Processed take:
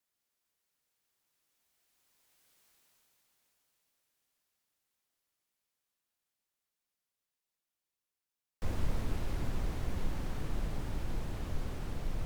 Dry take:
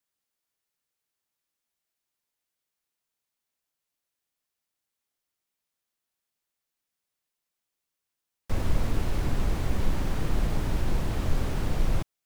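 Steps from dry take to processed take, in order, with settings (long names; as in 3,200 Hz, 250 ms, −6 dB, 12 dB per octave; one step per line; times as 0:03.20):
source passing by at 0:02.62, 14 m/s, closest 5.8 metres
level +16 dB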